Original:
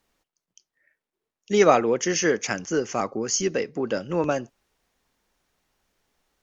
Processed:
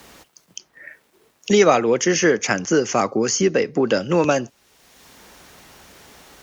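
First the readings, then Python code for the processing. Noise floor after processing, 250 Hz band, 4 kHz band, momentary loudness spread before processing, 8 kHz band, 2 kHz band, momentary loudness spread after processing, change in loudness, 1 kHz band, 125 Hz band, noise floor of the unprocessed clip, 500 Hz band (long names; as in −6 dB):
−62 dBFS, +6.5 dB, +5.5 dB, 10 LU, can't be measured, +6.0 dB, 7 LU, +5.0 dB, +3.5 dB, +6.5 dB, below −85 dBFS, +5.0 dB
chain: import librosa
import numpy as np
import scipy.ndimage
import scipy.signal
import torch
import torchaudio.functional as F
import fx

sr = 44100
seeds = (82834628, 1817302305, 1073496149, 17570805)

y = scipy.signal.sosfilt(scipy.signal.butter(2, 58.0, 'highpass', fs=sr, output='sos'), x)
y = fx.band_squash(y, sr, depth_pct=70)
y = F.gain(torch.from_numpy(y), 6.0).numpy()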